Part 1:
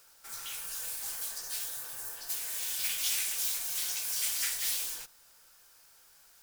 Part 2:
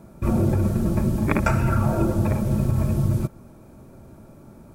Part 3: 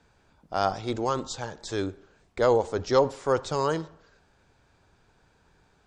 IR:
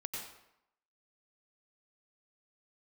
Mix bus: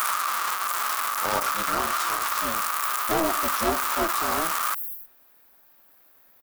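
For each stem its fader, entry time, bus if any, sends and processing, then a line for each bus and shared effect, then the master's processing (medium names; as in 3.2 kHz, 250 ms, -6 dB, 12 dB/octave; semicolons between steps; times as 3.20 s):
-2.5 dB, 0.00 s, bus A, no send, inverse Chebyshev band-stop 180–3200 Hz, stop band 80 dB
0.0 dB, 0.00 s, bus A, no send, one-bit comparator; resonant high-pass 1.2 kHz, resonance Q 7.4
0.0 dB, 0.70 s, no bus, no send, steep high-pass 400 Hz 36 dB/octave; polarity switched at an audio rate 160 Hz
bus A: 0.0 dB, treble shelf 4.4 kHz +10 dB; peak limiter -12.5 dBFS, peak gain reduction 10.5 dB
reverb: none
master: peak limiter -13 dBFS, peak gain reduction 6 dB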